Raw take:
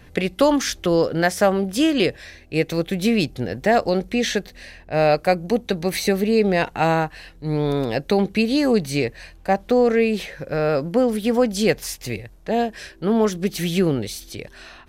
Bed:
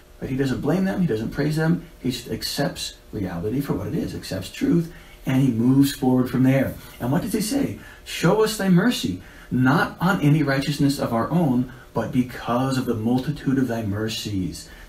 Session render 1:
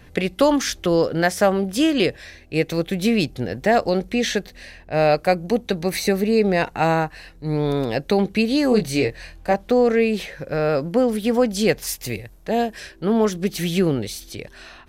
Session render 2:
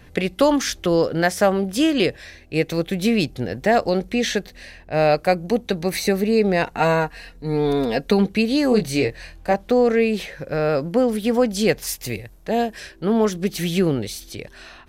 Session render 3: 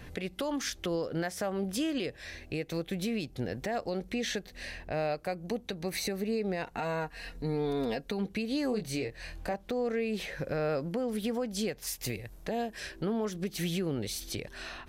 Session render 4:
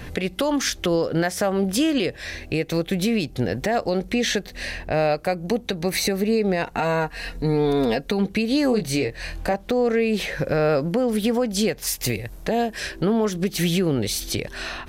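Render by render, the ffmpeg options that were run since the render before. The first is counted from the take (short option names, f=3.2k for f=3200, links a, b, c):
-filter_complex "[0:a]asettb=1/sr,asplit=3[a][b][c];[a]atrim=end=5.844[d];[b]atrim=start=5.84:end=7.63,asetpts=PTS-STARTPTS,afade=t=in:d=0.004:c=qsin,afade=t=out:st=1.786:d=0.004:c=qsin,equalizer=f=3.2k:w=6.8:g=-6.5[e];[c]atrim=start=7.626[f];[d][e]acrossfade=d=0.004:c1=hsin:c2=qsin[g];[g][f]acrossfade=d=0.004:c1=qsin:c2=hsin,asettb=1/sr,asplit=3[h][i][j];[h]atrim=end=8.694[k];[i]atrim=start=8.69:end=9.54,asetpts=PTS-STARTPTS,afade=t=in:d=0.004:c=qsin,afade=t=out:st=0.846:d=0.004:c=qsin,asplit=2[l][m];[m]adelay=24,volume=-5dB[n];[l][n]amix=inputs=2:normalize=0,atrim=end_sample=37485[o];[j]atrim=start=9.536[p];[k][o]acrossfade=d=0.004:c1=hsin:c2=qsin[q];[q][p]acrossfade=d=0.004:c1=qsin:c2=hsin,asettb=1/sr,asplit=3[r][s][t];[r]atrim=end=11.874[u];[s]atrim=start=11.87:end=12.8,asetpts=PTS-STARTPTS,afade=t=in:d=0.004:c=qsin,afade=t=out:st=0.926:d=0.004:c=qsin,highshelf=f=9.8k:g=9.5[v];[t]atrim=start=12.796[w];[u][v]acrossfade=d=0.004:c1=hsin:c2=qsin[x];[x][w]acrossfade=d=0.004:c1=qsin:c2=hsin"
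-filter_complex "[0:a]asettb=1/sr,asplit=3[a][b][c];[a]atrim=end=6.774[d];[b]atrim=start=6.77:end=8.27,asetpts=PTS-STARTPTS,afade=t=in:d=0.004:c=qsin,afade=t=out:st=1.496:d=0.004:c=qsin,aecho=1:1:4.3:0.62,atrim=end_sample=66150[e];[c]atrim=start=8.266[f];[d][e]acrossfade=d=0.004:c1=hsin:c2=qsin[g];[g][f]acrossfade=d=0.004:c1=qsin:c2=hsin"
-af "acompressor=threshold=-34dB:ratio=2,alimiter=limit=-23.5dB:level=0:latency=1:release=259"
-af "volume=11dB"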